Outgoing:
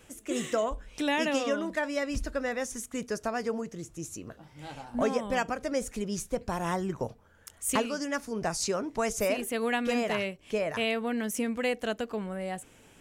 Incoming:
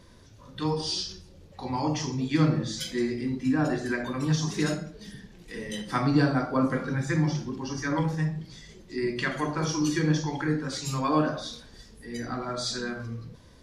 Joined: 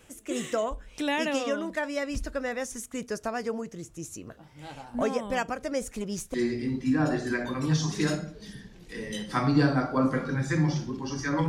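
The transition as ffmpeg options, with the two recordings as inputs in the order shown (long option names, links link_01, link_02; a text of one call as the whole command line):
ffmpeg -i cue0.wav -i cue1.wav -filter_complex "[0:a]asettb=1/sr,asplit=3[link_01][link_02][link_03];[link_01]atrim=end=5.844[link_04];[link_02]atrim=start=5.84:end=6.34,asetpts=PTS-STARTPTS,afade=type=in:duration=0.004:curve=qsin,afade=type=out:start_time=0.496:duration=0.004:curve=qsin,aeval=exprs='clip(val(0),-1,0.0299)':channel_layout=same[link_05];[link_03]atrim=start=6.336[link_06];[link_04][link_05]acrossfade=duration=0.004:curve1=hsin:curve2=qsin[link_07];[link_07][link_06]acrossfade=duration=0.004:curve1=qsin:curve2=hsin,apad=whole_dur=11.48,atrim=end=11.48,atrim=end=6.342[link_08];[1:a]atrim=start=2.928:end=8.07[link_09];[link_08][link_09]acrossfade=duration=0.004:curve1=hsin:curve2=hsin" out.wav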